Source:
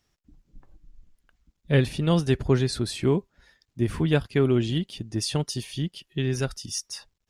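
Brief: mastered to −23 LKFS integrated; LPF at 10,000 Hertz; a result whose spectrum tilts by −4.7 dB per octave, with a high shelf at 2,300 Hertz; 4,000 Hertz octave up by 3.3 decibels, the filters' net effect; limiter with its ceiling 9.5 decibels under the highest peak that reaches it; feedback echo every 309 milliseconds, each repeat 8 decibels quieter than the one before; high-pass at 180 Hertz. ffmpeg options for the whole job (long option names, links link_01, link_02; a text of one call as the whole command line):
ffmpeg -i in.wav -af "highpass=180,lowpass=10000,highshelf=frequency=2300:gain=-5,equalizer=frequency=4000:width_type=o:gain=9,alimiter=limit=-18dB:level=0:latency=1,aecho=1:1:309|618|927|1236|1545:0.398|0.159|0.0637|0.0255|0.0102,volume=7dB" out.wav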